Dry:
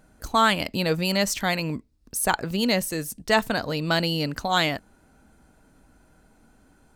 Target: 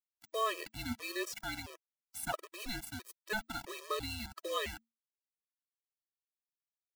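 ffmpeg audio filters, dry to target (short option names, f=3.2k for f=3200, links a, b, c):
-af "highpass=f=1.1k:p=1,highshelf=f=2k:g=-9,acrusher=bits=5:mix=0:aa=0.000001,afreqshift=-230,afftfilt=real='re*gt(sin(2*PI*1.5*pts/sr)*(1-2*mod(floor(b*sr/1024/330),2)),0)':imag='im*gt(sin(2*PI*1.5*pts/sr)*(1-2*mod(floor(b*sr/1024/330),2)),0)':win_size=1024:overlap=0.75,volume=-5dB"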